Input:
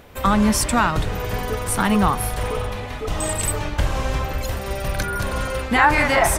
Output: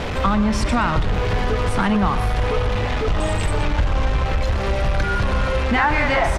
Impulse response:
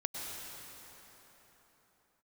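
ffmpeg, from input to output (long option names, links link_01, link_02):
-filter_complex "[0:a]aeval=exprs='val(0)+0.5*0.0944*sgn(val(0))':channel_layout=same,lowpass=3900,lowshelf=frequency=78:gain=6,asplit=2[link_01][link_02];[link_02]aecho=0:1:121:0.2[link_03];[link_01][link_03]amix=inputs=2:normalize=0,acompressor=threshold=-16dB:ratio=2.5"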